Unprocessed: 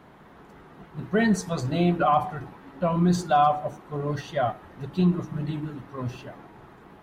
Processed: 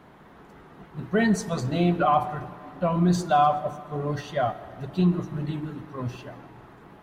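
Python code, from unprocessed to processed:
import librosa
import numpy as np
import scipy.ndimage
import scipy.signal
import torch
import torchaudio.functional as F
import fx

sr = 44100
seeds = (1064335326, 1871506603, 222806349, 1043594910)

y = fx.rev_freeverb(x, sr, rt60_s=2.4, hf_ratio=0.6, predelay_ms=95, drr_db=17.0)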